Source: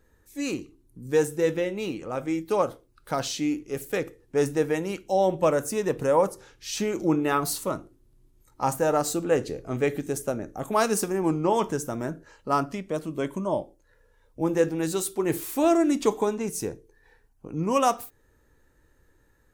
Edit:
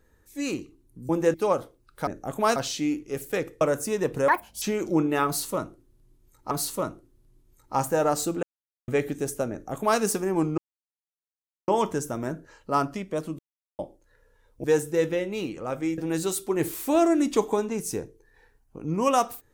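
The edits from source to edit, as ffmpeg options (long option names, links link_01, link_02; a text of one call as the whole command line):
ffmpeg -i in.wav -filter_complex "[0:a]asplit=16[link_01][link_02][link_03][link_04][link_05][link_06][link_07][link_08][link_09][link_10][link_11][link_12][link_13][link_14][link_15][link_16];[link_01]atrim=end=1.092[link_17];[link_02]atrim=start=14.418:end=14.672[link_18];[link_03]atrim=start=2.428:end=3.162[link_19];[link_04]atrim=start=10.388:end=10.882[link_20];[link_05]atrim=start=3.158:end=4.212[link_21];[link_06]atrim=start=5.458:end=6.134[link_22];[link_07]atrim=start=6.13:end=6.75,asetpts=PTS-STARTPTS,asetrate=80703,aresample=44100[link_23];[link_08]atrim=start=6.746:end=8.642[link_24];[link_09]atrim=start=7.388:end=9.31,asetpts=PTS-STARTPTS,afade=type=out:start_time=1.918:duration=0.004:curve=hsin[link_25];[link_10]atrim=start=9.31:end=9.76,asetpts=PTS-STARTPTS,volume=0[link_26];[link_11]atrim=start=9.76:end=11.46,asetpts=PTS-STARTPTS,afade=type=in:duration=0.004:curve=hsin,afade=type=out:start_time=1.696:duration=0.004:curve=hsin,apad=pad_dur=1.1[link_27];[link_12]atrim=start=11.46:end=13.17,asetpts=PTS-STARTPTS,afade=type=in:duration=0.004:curve=hsin,afade=type=out:start_time=1.706:duration=0.004:curve=hsin[link_28];[link_13]atrim=start=13.17:end=13.57,asetpts=PTS-STARTPTS,volume=0[link_29];[link_14]atrim=start=13.57:end=14.422,asetpts=PTS-STARTPTS,afade=type=in:duration=0.004:curve=hsin[link_30];[link_15]atrim=start=1.088:end=2.432[link_31];[link_16]atrim=start=14.668[link_32];[link_17][link_18]acrossfade=duration=0.004:curve1=hsin:curve2=hsin[link_33];[link_33][link_19]acrossfade=duration=0.004:curve1=hsin:curve2=hsin[link_34];[link_34][link_20]acrossfade=duration=0.004:curve1=hsin:curve2=hsin[link_35];[link_35][link_21]acrossfade=duration=0.004:curve1=hsin:curve2=hsin[link_36];[link_36][link_22]acrossfade=duration=0.004:curve1=hsin:curve2=hsin[link_37];[link_37][link_23]acrossfade=duration=0.004:curve1=hsin:curve2=hsin[link_38];[link_38][link_24]acrossfade=duration=0.004:curve1=hsin:curve2=hsin[link_39];[link_25][link_26][link_27][link_28][link_29][link_30]concat=n=6:v=0:a=1[link_40];[link_39][link_40]acrossfade=duration=0.004:curve1=hsin:curve2=hsin[link_41];[link_41][link_31]acrossfade=duration=0.004:curve1=hsin:curve2=hsin[link_42];[link_42][link_32]acrossfade=duration=0.004:curve1=hsin:curve2=hsin" out.wav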